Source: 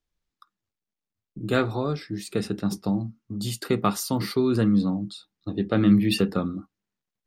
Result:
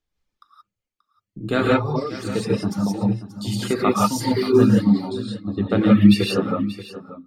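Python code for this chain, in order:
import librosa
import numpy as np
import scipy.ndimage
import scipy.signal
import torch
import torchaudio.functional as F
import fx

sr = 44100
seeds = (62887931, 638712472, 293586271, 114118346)

y = fx.high_shelf(x, sr, hz=9900.0, db=-11.0)
y = fx.rev_gated(y, sr, seeds[0], gate_ms=200, shape='rising', drr_db=-4.5)
y = fx.quant_float(y, sr, bits=6, at=(3.87, 4.68))
y = fx.dereverb_blind(y, sr, rt60_s=1.4)
y = y + 10.0 ** (-14.5 / 20.0) * np.pad(y, (int(582 * sr / 1000.0), 0))[:len(y)]
y = F.gain(torch.from_numpy(y), 1.5).numpy()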